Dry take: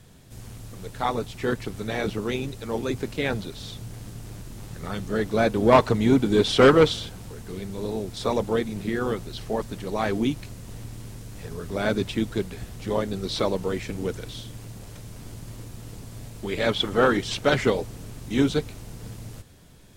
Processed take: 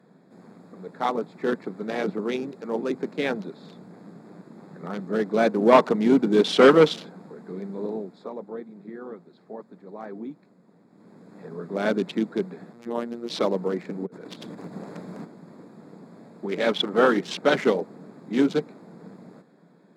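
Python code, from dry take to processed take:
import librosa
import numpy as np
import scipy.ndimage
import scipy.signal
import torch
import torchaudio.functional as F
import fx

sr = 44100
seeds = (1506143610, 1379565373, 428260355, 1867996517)

y = fx.robotise(x, sr, hz=118.0, at=(12.73, 13.3))
y = fx.over_compress(y, sr, threshold_db=-39.0, ratio=-0.5, at=(14.05, 15.24), fade=0.02)
y = fx.edit(y, sr, fx.fade_down_up(start_s=7.81, length_s=3.55, db=-12.0, fade_s=0.48), tone=tone)
y = fx.wiener(y, sr, points=15)
y = scipy.signal.sosfilt(scipy.signal.ellip(4, 1.0, 50, 170.0, 'highpass', fs=sr, output='sos'), y)
y = fx.high_shelf(y, sr, hz=11000.0, db=-9.0)
y = F.gain(torch.from_numpy(y), 1.5).numpy()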